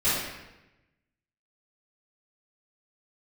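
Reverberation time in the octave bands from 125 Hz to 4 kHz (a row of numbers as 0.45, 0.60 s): 1.4, 1.1, 1.0, 0.95, 1.0, 0.80 s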